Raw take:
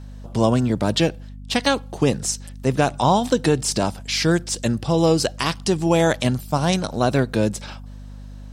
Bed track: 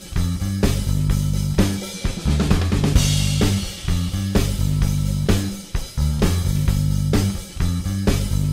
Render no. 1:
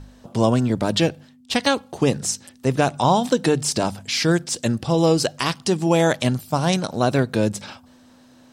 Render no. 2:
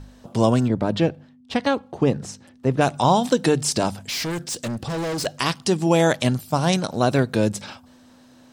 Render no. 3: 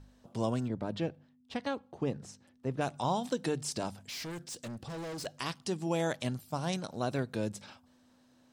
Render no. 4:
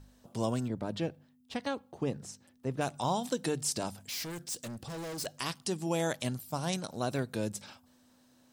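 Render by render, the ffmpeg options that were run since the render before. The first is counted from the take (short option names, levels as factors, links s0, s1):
-af "bandreject=f=50:t=h:w=4,bandreject=f=100:t=h:w=4,bandreject=f=150:t=h:w=4,bandreject=f=200:t=h:w=4"
-filter_complex "[0:a]asettb=1/sr,asplit=3[s0][s1][s2];[s0]atrim=end=0.684[s3];[s1]atrim=start=0.68:end=2.81,asetpts=PTS-STARTPTS,afade=t=in:d=0.004:c=qsin,afade=t=out:st=2.126:d=0.004:c=qsin,lowpass=f=1400:p=1[s4];[s2]atrim=start=2.806[s5];[s3][s4]acrossfade=d=0.004:c1=hsin:c2=qsin[s6];[s6][s5]acrossfade=d=0.004:c1=qsin:c2=hsin,asettb=1/sr,asplit=3[s7][s8][s9];[s7]atrim=end=4.064[s10];[s8]atrim=start=4.06:end=5.26,asetpts=PTS-STARTPTS,afade=t=in:d=0.004:c=qsin,afade=t=out:st=1.196:d=0.004:c=qsin,volume=16.8,asoftclip=hard,volume=0.0596[s11];[s9]atrim=start=5.256[s12];[s10][s11]acrossfade=d=0.004:c1=hsin:c2=qsin[s13];[s13][s12]acrossfade=d=0.004:c1=qsin:c2=hsin"
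-af "volume=0.2"
-af "highshelf=f=7900:g=12"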